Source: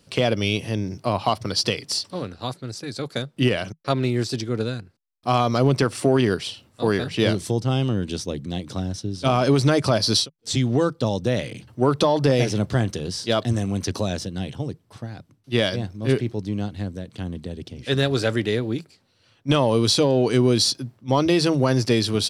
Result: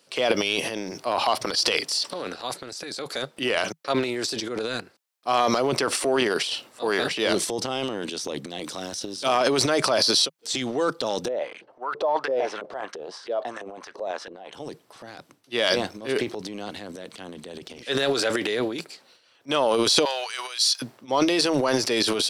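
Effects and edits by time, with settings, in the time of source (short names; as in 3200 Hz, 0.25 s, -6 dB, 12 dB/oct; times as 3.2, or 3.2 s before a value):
8.64–9.35 high shelf 4400 Hz +7 dB
11.28–14.53 LFO band-pass saw up 3 Hz 400–1700 Hz
20.05–20.82 Bessel high-pass 1400 Hz, order 4
whole clip: HPF 430 Hz 12 dB/oct; transient shaper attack -2 dB, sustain +12 dB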